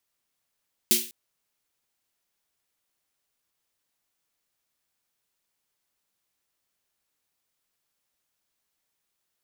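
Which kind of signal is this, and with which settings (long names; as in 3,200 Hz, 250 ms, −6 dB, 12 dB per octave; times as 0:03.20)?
synth snare length 0.20 s, tones 230 Hz, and 360 Hz, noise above 2,400 Hz, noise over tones 10 dB, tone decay 0.31 s, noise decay 0.38 s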